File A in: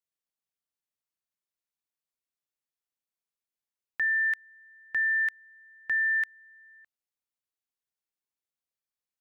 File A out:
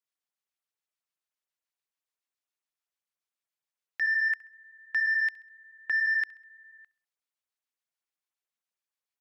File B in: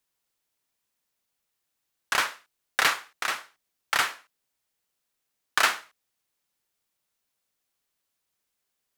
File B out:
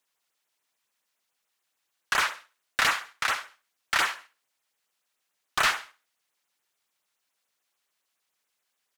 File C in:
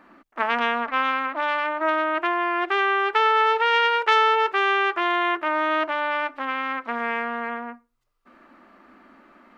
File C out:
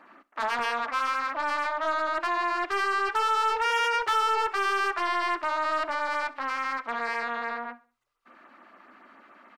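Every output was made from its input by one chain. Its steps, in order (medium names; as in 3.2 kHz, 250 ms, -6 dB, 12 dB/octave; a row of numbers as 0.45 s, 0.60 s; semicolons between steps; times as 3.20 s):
overdrive pedal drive 19 dB, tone 5 kHz, clips at -4.5 dBFS; LFO notch sine 7 Hz 330–5100 Hz; feedback delay 66 ms, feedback 43%, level -22 dB; normalise loudness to -27 LUFS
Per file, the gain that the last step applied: -10.0 dB, -7.0 dB, -10.5 dB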